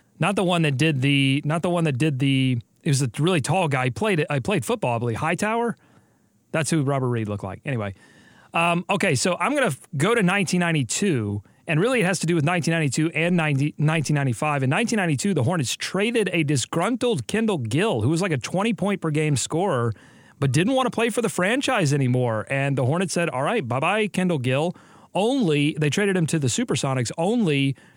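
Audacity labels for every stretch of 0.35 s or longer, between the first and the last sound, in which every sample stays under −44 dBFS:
5.970000	6.540000	silence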